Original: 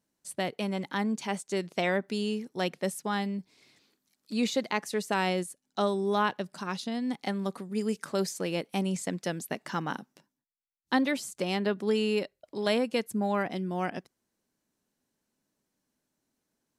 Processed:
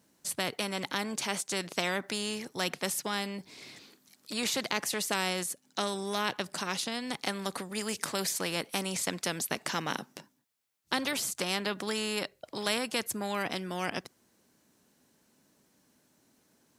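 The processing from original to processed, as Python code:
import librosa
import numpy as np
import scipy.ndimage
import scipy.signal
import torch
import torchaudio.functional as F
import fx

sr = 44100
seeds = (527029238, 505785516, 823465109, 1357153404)

y = scipy.signal.sosfilt(scipy.signal.butter(2, 62.0, 'highpass', fs=sr, output='sos'), x)
y = fx.spectral_comp(y, sr, ratio=2.0)
y = y * librosa.db_to_amplitude(2.0)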